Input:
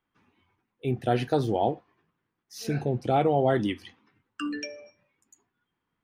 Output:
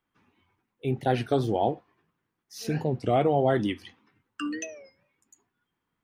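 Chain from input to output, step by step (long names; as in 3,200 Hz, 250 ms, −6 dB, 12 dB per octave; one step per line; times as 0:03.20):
wow of a warped record 33 1/3 rpm, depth 160 cents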